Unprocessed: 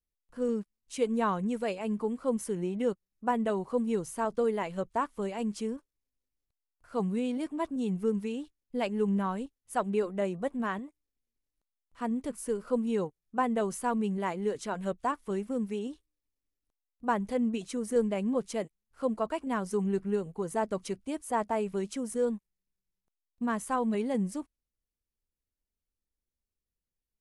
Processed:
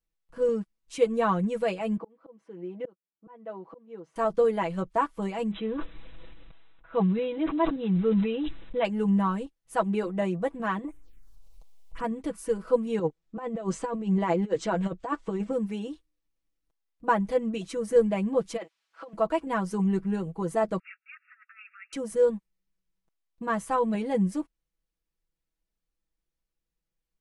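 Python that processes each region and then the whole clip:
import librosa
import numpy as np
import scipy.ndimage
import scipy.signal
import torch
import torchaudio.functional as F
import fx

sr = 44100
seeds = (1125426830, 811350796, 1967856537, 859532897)

y = fx.chain(x, sr, fx.highpass(hz=320.0, slope=12),
    fx.auto_swell(attack_ms=749.0),
    fx.spacing_loss(db_at_10k=30), at=(1.97, 4.16))
y = fx.chain(y, sr, fx.block_float(bits=5),
    fx.brickwall_lowpass(high_hz=4000.0),
    fx.sustainer(db_per_s=26.0), at=(5.51, 8.85))
y = fx.chain(y, sr, fx.env_phaser(low_hz=240.0, high_hz=4600.0, full_db=-50.5),
    fx.low_shelf(hz=72.0, db=12.0),
    fx.env_flatten(amount_pct=50), at=(10.84, 12.04))
y = fx.chain(y, sr, fx.cheby1_lowpass(hz=8000.0, order=4),
    fx.peak_eq(hz=470.0, db=4.5, octaves=1.6),
    fx.over_compress(threshold_db=-31.0, ratio=-0.5), at=(12.99, 15.53))
y = fx.over_compress(y, sr, threshold_db=-33.0, ratio=-0.5, at=(18.56, 19.13), fade=0.02)
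y = fx.dmg_noise_colour(y, sr, seeds[0], colour='blue', level_db=-70.0, at=(18.56, 19.13), fade=0.02)
y = fx.bandpass_edges(y, sr, low_hz=640.0, high_hz=4300.0, at=(18.56, 19.13), fade=0.02)
y = fx.chain(y, sr, fx.brickwall_bandpass(low_hz=1200.0, high_hz=2800.0),
    fx.over_compress(threshold_db=-51.0, ratio=-0.5), at=(20.79, 21.93))
y = fx.high_shelf(y, sr, hz=6700.0, db=-10.0)
y = y + 0.8 * np.pad(y, (int(6.1 * sr / 1000.0), 0))[:len(y)]
y = y * 10.0 ** (2.5 / 20.0)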